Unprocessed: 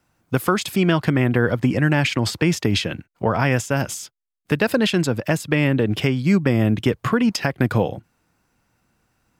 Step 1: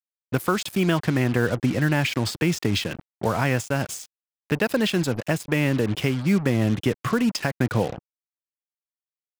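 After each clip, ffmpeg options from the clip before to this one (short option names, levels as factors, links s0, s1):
-af "afftfilt=real='re*gte(hypot(re,im),0.00891)':imag='im*gte(hypot(re,im),0.00891)':win_size=1024:overlap=0.75,acrusher=bits=4:mix=0:aa=0.5,volume=0.668"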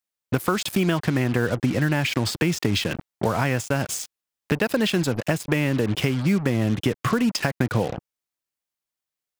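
-af "acompressor=threshold=0.0355:ratio=2.5,volume=2.37"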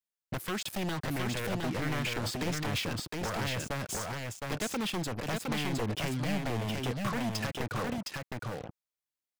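-af "aeval=exprs='0.112*(abs(mod(val(0)/0.112+3,4)-2)-1)':c=same,aecho=1:1:713:0.708,volume=0.376"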